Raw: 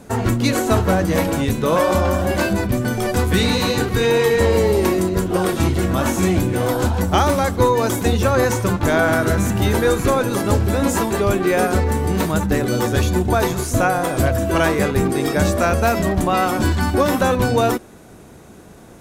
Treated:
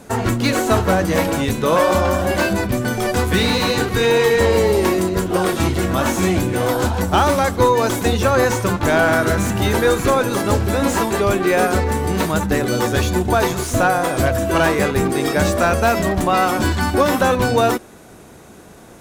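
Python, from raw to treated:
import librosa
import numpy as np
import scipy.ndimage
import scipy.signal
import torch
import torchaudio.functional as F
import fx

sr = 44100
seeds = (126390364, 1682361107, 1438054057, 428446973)

y = fx.tracing_dist(x, sr, depth_ms=0.025)
y = fx.low_shelf(y, sr, hz=360.0, db=-5.0)
y = fx.slew_limit(y, sr, full_power_hz=290.0)
y = y * librosa.db_to_amplitude(3.0)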